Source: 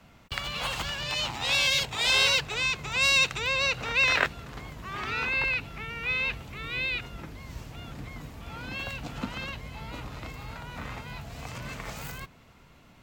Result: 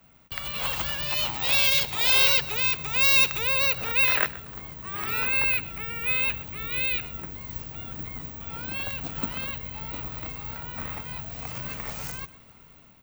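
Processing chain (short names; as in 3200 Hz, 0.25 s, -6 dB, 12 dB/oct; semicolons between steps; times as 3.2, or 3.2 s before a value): AGC gain up to 5.5 dB; careless resampling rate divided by 2×, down none, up zero stuff; on a send: echo 0.125 s -18 dB; on the sum: gain -5 dB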